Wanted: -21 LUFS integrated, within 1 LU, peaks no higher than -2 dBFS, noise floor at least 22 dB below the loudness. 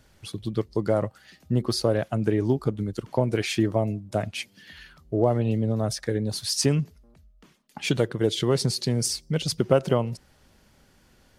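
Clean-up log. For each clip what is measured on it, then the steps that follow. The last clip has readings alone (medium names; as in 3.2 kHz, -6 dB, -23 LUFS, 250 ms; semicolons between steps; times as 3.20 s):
loudness -26.0 LUFS; peak level -6.0 dBFS; loudness target -21.0 LUFS
-> trim +5 dB; peak limiter -2 dBFS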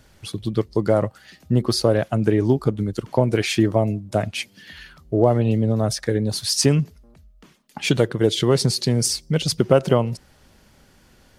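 loudness -21.0 LUFS; peak level -2.0 dBFS; noise floor -55 dBFS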